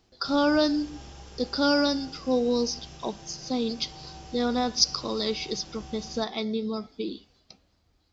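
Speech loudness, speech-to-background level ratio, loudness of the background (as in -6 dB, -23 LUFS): -27.5 LUFS, 18.5 dB, -46.0 LUFS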